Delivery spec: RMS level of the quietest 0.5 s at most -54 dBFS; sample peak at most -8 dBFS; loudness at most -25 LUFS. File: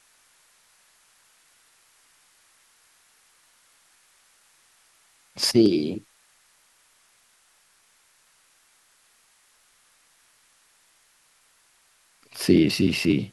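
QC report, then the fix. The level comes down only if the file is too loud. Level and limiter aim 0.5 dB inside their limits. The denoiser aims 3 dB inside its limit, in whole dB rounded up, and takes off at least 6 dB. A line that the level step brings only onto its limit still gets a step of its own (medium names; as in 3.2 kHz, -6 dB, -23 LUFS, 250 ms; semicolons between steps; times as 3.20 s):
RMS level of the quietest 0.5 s -62 dBFS: pass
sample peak -5.0 dBFS: fail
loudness -22.0 LUFS: fail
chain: trim -3.5 dB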